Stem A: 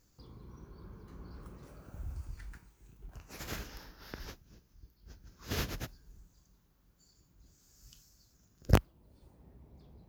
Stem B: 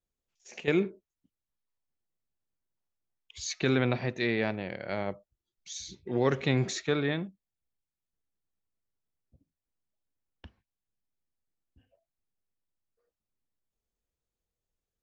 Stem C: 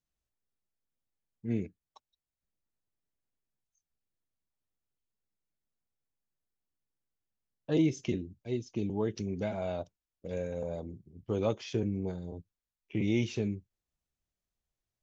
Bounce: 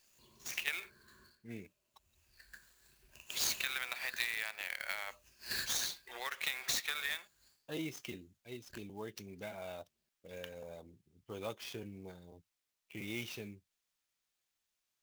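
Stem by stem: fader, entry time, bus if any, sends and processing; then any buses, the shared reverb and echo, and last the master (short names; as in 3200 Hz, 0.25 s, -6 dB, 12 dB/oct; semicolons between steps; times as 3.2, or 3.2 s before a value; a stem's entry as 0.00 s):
-2.5 dB, 0.00 s, bus A, no send, ripple EQ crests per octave 1.4, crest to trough 13 dB; phaser stages 8, 0.65 Hz, lowest notch 780–1600 Hz; auto duck -21 dB, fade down 0.20 s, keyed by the third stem
+0.5 dB, 0.00 s, bus A, no send, HPF 970 Hz 12 dB/oct
-7.5 dB, 0.00 s, no bus, no send, high shelf 4000 Hz -5.5 dB
bus A: 0.0 dB, low shelf 240 Hz -11.5 dB; compressor 12:1, threshold -39 dBFS, peak gain reduction 12 dB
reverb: off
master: tilt shelf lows -9.5 dB, about 870 Hz; clock jitter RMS 0.02 ms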